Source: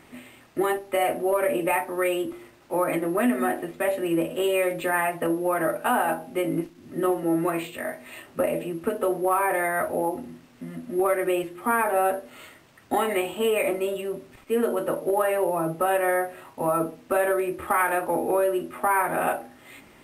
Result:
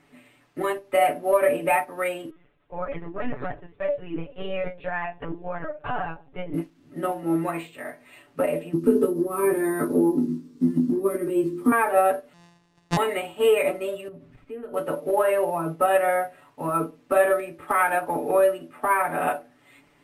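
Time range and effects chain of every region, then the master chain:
0:02.30–0:06.54: flanger 1.9 Hz, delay 1.5 ms, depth 1.1 ms, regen +79% + linear-prediction vocoder at 8 kHz pitch kept
0:08.73–0:11.72: drawn EQ curve 110 Hz 0 dB, 180 Hz +13 dB, 360 Hz +15 dB, 720 Hz −15 dB, 1,000 Hz −3 dB, 2,000 Hz −10 dB, 2,900 Hz −7 dB, 4,700 Hz +3 dB + downward compressor 2.5 to 1, threshold −19 dBFS + double-tracking delay 20 ms −3 dB
0:12.33–0:12.97: samples sorted by size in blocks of 256 samples + low-pass filter 7,400 Hz + high-shelf EQ 5,700 Hz +7.5 dB
0:14.08–0:14.74: bass and treble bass +12 dB, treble −8 dB + downward compressor 2.5 to 1, threshold −35 dBFS
whole clip: high-shelf EQ 11,000 Hz −9.5 dB; comb filter 6.9 ms, depth 67%; expander for the loud parts 1.5 to 1, over −38 dBFS; level +2 dB

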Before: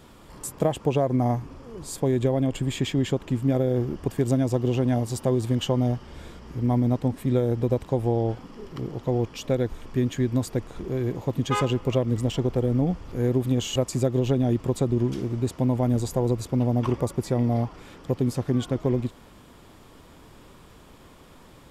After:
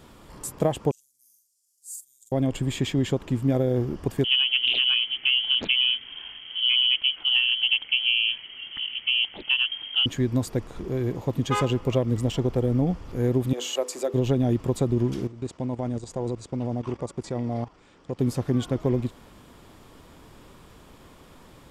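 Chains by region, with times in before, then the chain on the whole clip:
0:00.91–0:02.32: inverse Chebyshev high-pass filter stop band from 1,800 Hz, stop band 70 dB + double-tracking delay 45 ms −2 dB
0:04.24–0:10.06: voice inversion scrambler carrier 3,200 Hz + highs frequency-modulated by the lows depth 0.95 ms
0:13.53–0:14.14: high-pass filter 370 Hz 24 dB per octave + mains-hum notches 50/100/150/200/250/300/350/400/450/500 Hz
0:15.27–0:18.19: Butterworth low-pass 9,000 Hz + low-shelf EQ 180 Hz −5.5 dB + output level in coarse steps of 14 dB
whole clip: no processing

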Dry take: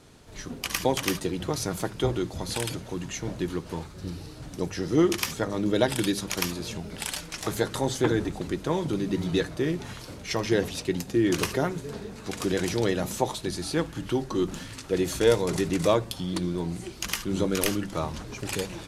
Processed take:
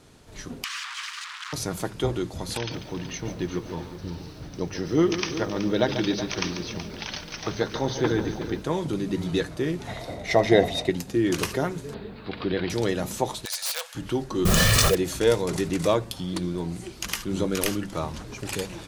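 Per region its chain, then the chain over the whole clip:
0:00.64–0:01.53: sign of each sample alone + Butterworth high-pass 1,100 Hz 48 dB per octave + high-frequency loss of the air 110 metres
0:02.57–0:08.62: linear-phase brick-wall low-pass 6,400 Hz + single-tap delay 375 ms −12 dB + feedback echo at a low word length 142 ms, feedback 35%, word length 8 bits, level −10 dB
0:09.87–0:10.90: tilt shelving filter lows +3.5 dB, about 1,300 Hz + hollow resonant body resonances 680/2,000/3,700 Hz, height 17 dB, ringing for 25 ms
0:11.94–0:12.70: Butterworth low-pass 4,500 Hz 72 dB per octave + bit-depth reduction 12 bits, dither none
0:13.45–0:13.95: tilt shelving filter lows −8.5 dB, about 1,300 Hz + wrap-around overflow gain 20.5 dB + linear-phase brick-wall high-pass 470 Hz
0:14.45–0:14.95: comb filter 1.7 ms, depth 98% + noise that follows the level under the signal 11 dB + envelope flattener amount 100%
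whole clip: no processing

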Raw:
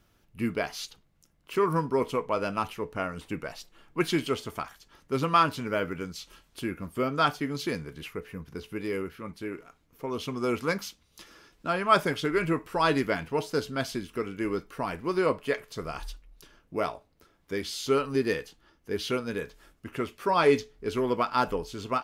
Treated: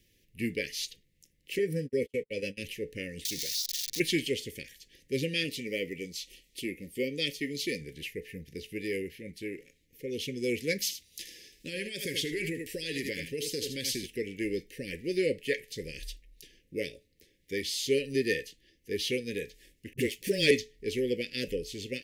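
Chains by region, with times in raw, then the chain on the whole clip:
0:01.58–0:02.60: noise gate −33 dBFS, range −42 dB + notch comb filter 350 Hz
0:03.25–0:04.00: spike at every zero crossing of −24.5 dBFS + flat-topped bell 4,700 Hz +12 dB 1.1 octaves + downward compressor 12 to 1, threshold −30 dBFS
0:05.44–0:07.81: Butterworth band-reject 1,600 Hz, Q 4.5 + parametric band 100 Hz −8.5 dB 1.1 octaves
0:10.80–0:14.06: high-shelf EQ 3,400 Hz +7.5 dB + single-tap delay 79 ms −10.5 dB + downward compressor 8 to 1, threshold −27 dBFS
0:19.93–0:20.51: bass and treble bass +3 dB, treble +6 dB + leveller curve on the samples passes 1 + all-pass dispersion highs, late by 46 ms, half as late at 310 Hz
whole clip: Chebyshev band-stop filter 540–1,800 Hz, order 5; tilt shelving filter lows −3.5 dB, about 730 Hz

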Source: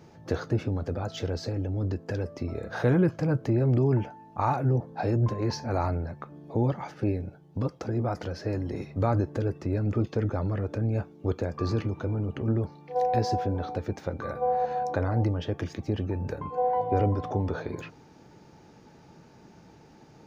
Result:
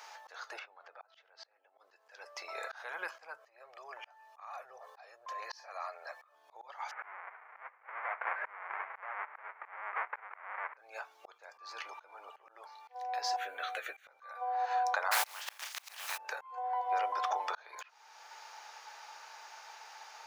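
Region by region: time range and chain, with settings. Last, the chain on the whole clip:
0:00.59–0:01.78: low-pass filter 2,600 Hz + mains-hum notches 50/100/150/200/250/300/350 Hz + output level in coarse steps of 24 dB
0:03.38–0:06.35: comb filter 1.7 ms, depth 58% + downward compressor 3 to 1, threshold −36 dBFS
0:06.91–0:10.77: each half-wave held at its own peak + Chebyshev low-pass filter 2,200 Hz, order 5
0:13.36–0:14.07: high-shelf EQ 4,800 Hz +4 dB + phaser with its sweep stopped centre 2,200 Hz, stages 4 + double-tracking delay 15 ms −8 dB
0:15.11–0:16.16: compressing power law on the bin magnitudes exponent 0.33 + notch filter 360 Hz, Q 6.1 + double-tracking delay 48 ms −12.5 dB
whole clip: inverse Chebyshev high-pass filter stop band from 250 Hz, stop band 60 dB; downward compressor 3 to 1, threshold −41 dBFS; volume swells 547 ms; level +11 dB

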